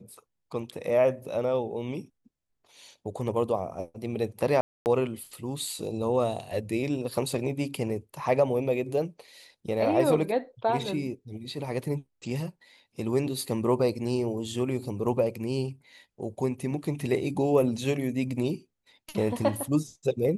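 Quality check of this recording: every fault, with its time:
0:04.61–0:04.86: drop-out 249 ms

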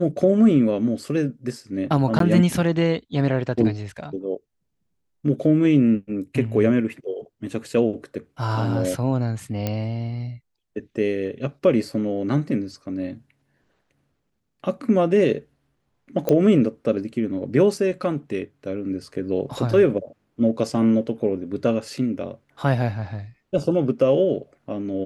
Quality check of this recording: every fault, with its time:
0:02.19–0:02.20: drop-out 13 ms
0:09.67: click −11 dBFS
0:16.29: click −9 dBFS

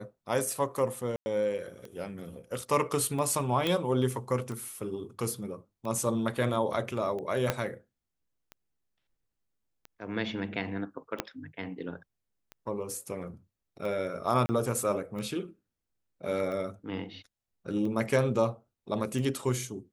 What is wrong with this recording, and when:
scratch tick 45 rpm
0:01.16–0:01.26: drop-out 100 ms
0:03.67: click −15 dBFS
0:07.50: click −11 dBFS
0:11.20: click −13 dBFS
0:14.46–0:14.49: drop-out 30 ms

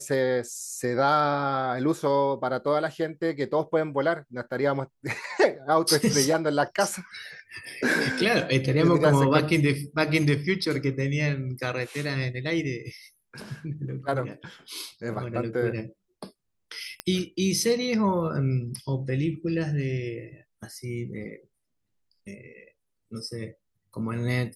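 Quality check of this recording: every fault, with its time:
0:17.00: click −13 dBFS

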